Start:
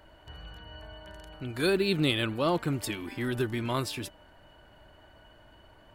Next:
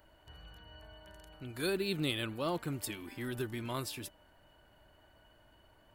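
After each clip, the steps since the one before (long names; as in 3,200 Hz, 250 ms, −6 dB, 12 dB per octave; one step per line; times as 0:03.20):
high-shelf EQ 9,000 Hz +11 dB
level −8 dB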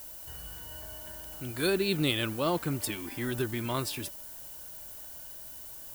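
background noise violet −51 dBFS
level +6 dB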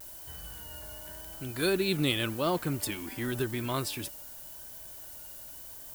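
pitch vibrato 0.9 Hz 43 cents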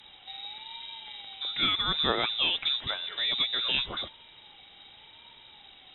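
voice inversion scrambler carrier 3,800 Hz
treble cut that deepens with the level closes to 2,700 Hz, closed at −24 dBFS
level +4 dB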